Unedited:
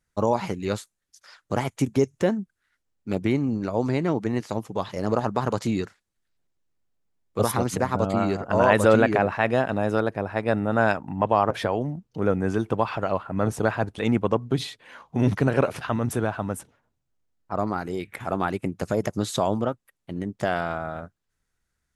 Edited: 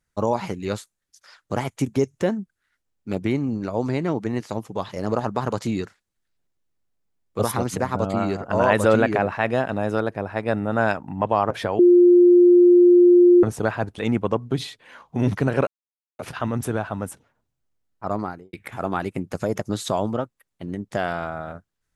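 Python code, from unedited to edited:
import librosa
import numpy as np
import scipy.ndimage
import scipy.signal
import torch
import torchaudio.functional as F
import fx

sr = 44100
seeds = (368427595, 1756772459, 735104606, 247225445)

y = fx.studio_fade_out(x, sr, start_s=17.67, length_s=0.34)
y = fx.edit(y, sr, fx.bleep(start_s=11.79, length_s=1.64, hz=353.0, db=-9.0),
    fx.insert_silence(at_s=15.67, length_s=0.52), tone=tone)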